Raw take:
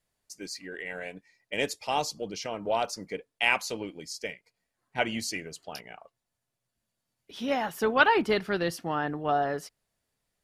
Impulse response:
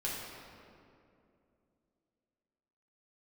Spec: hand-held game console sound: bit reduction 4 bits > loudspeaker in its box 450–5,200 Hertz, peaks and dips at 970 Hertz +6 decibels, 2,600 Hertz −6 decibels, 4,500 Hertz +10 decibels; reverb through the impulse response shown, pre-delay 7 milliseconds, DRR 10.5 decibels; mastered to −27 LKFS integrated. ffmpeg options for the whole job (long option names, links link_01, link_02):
-filter_complex "[0:a]asplit=2[link_01][link_02];[1:a]atrim=start_sample=2205,adelay=7[link_03];[link_02][link_03]afir=irnorm=-1:irlink=0,volume=-14.5dB[link_04];[link_01][link_04]amix=inputs=2:normalize=0,acrusher=bits=3:mix=0:aa=0.000001,highpass=450,equalizer=frequency=970:width_type=q:width=4:gain=6,equalizer=frequency=2600:width_type=q:width=4:gain=-6,equalizer=frequency=4500:width_type=q:width=4:gain=10,lowpass=frequency=5200:width=0.5412,lowpass=frequency=5200:width=1.3066"